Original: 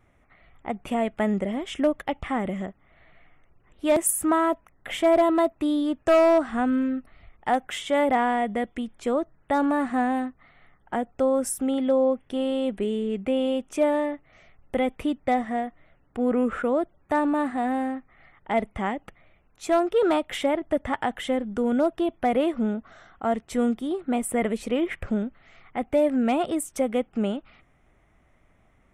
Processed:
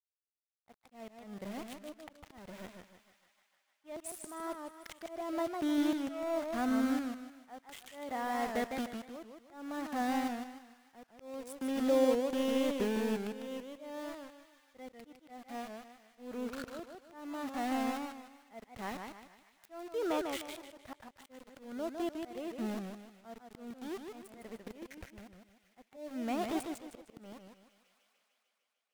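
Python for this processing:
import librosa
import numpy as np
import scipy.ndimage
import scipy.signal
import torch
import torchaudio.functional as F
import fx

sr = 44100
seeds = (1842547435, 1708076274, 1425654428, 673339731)

y = scipy.signal.sosfilt(scipy.signal.butter(2, 8800.0, 'lowpass', fs=sr, output='sos'), x)
y = np.where(np.abs(y) >= 10.0 ** (-29.0 / 20.0), y, 0.0)
y = fx.echo_wet_highpass(y, sr, ms=150, feedback_pct=75, hz=1600.0, wet_db=-22.0)
y = fx.auto_swell(y, sr, attack_ms=768.0)
y = fx.echo_warbled(y, sr, ms=153, feedback_pct=35, rate_hz=2.8, cents=168, wet_db=-5.5)
y = F.gain(torch.from_numpy(y), -6.5).numpy()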